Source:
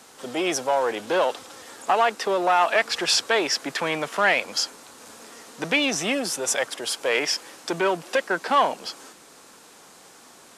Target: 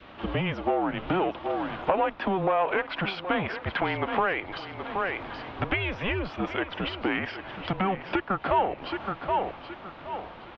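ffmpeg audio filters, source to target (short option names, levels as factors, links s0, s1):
-af "aecho=1:1:772|1544|2316:0.2|0.0559|0.0156,acompressor=threshold=0.0282:ratio=6,highpass=f=200:t=q:w=0.5412,highpass=f=200:t=q:w=1.307,lowpass=f=3400:t=q:w=0.5176,lowpass=f=3400:t=q:w=0.7071,lowpass=f=3400:t=q:w=1.932,afreqshift=-190,adynamicequalizer=threshold=0.00355:dfrequency=820:dqfactor=1.2:tfrequency=820:tqfactor=1.2:attack=5:release=100:ratio=0.375:range=3:mode=boostabove:tftype=bell,volume=1.78"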